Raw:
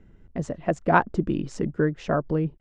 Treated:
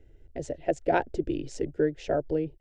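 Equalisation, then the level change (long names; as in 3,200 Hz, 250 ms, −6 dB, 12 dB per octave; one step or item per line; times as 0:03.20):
phaser with its sweep stopped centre 470 Hz, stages 4
0.0 dB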